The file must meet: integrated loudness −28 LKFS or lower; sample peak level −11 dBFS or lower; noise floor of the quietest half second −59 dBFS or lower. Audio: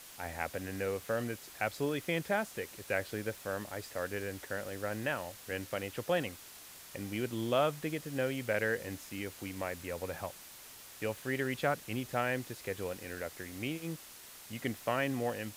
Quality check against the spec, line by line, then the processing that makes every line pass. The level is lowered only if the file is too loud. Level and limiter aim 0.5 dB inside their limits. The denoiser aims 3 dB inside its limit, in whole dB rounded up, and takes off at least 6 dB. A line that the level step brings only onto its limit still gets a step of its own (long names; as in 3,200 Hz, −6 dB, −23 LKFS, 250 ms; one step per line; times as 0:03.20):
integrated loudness −36.5 LKFS: in spec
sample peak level −16.0 dBFS: in spec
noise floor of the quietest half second −52 dBFS: out of spec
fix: broadband denoise 10 dB, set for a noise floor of −52 dBFS